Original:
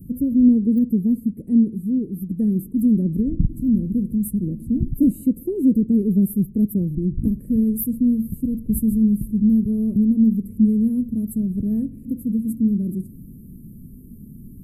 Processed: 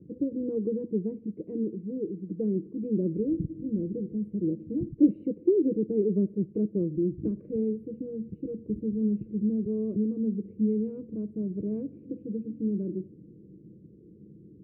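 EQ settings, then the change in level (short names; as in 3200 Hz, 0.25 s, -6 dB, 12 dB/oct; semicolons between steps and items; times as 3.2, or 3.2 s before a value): speaker cabinet 200–2200 Hz, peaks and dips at 220 Hz +8 dB, 320 Hz +9 dB, 470 Hz +4 dB, 810 Hz +7 dB, 1400 Hz +4 dB, 2000 Hz +3 dB; fixed phaser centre 1200 Hz, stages 8; 0.0 dB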